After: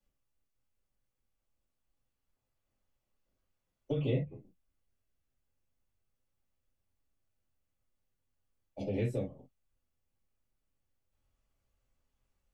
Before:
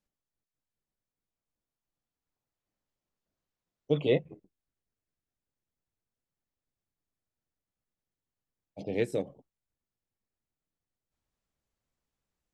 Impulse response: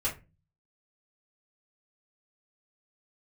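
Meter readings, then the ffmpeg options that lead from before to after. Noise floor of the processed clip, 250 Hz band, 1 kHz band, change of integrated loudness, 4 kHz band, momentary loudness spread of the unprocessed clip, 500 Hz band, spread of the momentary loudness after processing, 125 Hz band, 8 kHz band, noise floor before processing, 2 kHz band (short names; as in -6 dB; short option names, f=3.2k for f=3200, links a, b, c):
-84 dBFS, -2.5 dB, -6.0 dB, -5.0 dB, -9.0 dB, 14 LU, -7.0 dB, 15 LU, +2.5 dB, n/a, under -85 dBFS, -8.5 dB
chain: -filter_complex "[1:a]atrim=start_sample=2205,atrim=end_sample=3087[a];[0:a][a]afir=irnorm=-1:irlink=0,acrossover=split=200[b][c];[c]acompressor=threshold=-32dB:ratio=5[d];[b][d]amix=inputs=2:normalize=0,volume=-3dB"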